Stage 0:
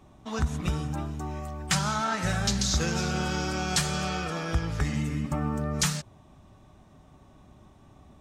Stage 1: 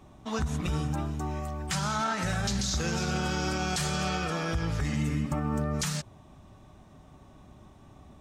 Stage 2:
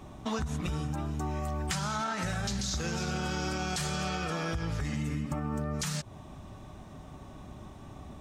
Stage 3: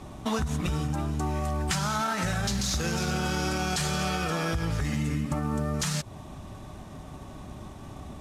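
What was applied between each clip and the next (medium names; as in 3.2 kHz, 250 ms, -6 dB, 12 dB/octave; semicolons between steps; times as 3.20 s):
peak limiter -22 dBFS, peak gain reduction 9 dB; trim +1.5 dB
compression 6:1, threshold -36 dBFS, peak gain reduction 11 dB; trim +6 dB
CVSD coder 64 kbps; trim +4.5 dB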